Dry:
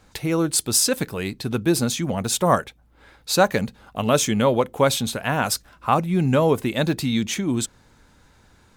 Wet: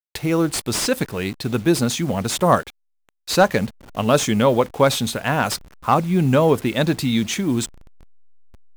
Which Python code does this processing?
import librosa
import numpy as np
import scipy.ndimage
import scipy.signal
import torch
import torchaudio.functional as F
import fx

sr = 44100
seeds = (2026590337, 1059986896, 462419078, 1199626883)

y = fx.delta_hold(x, sr, step_db=-39.5)
y = fx.slew_limit(y, sr, full_power_hz=390.0)
y = y * librosa.db_to_amplitude(2.5)